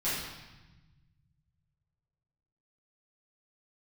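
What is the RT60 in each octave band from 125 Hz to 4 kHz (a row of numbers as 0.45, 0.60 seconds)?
2.9, 1.9, 1.0, 1.1, 1.1, 1.1 seconds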